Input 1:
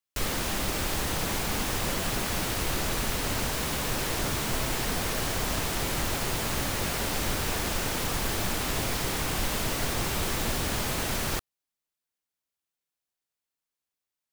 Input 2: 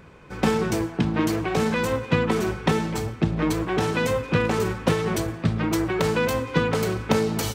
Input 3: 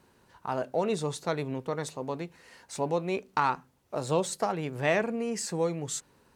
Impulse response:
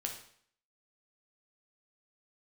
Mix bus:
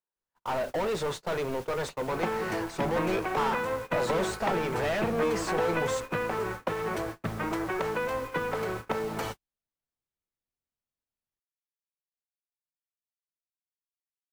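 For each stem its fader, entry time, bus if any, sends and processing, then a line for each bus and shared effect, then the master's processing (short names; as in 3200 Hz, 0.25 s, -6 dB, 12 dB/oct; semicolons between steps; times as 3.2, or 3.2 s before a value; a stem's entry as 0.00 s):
-19.5 dB, 0.00 s, no send, dry
+1.0 dB, 1.80 s, no send, three-band isolator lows -12 dB, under 440 Hz, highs -15 dB, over 2300 Hz; compressor 6:1, threshold -28 dBFS, peak gain reduction 8.5 dB
-10.0 dB, 0.00 s, no send, bell 280 Hz -7 dB 0.55 oct; overdrive pedal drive 35 dB, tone 1600 Hz, clips at -11 dBFS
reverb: off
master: gate -35 dBFS, range -50 dB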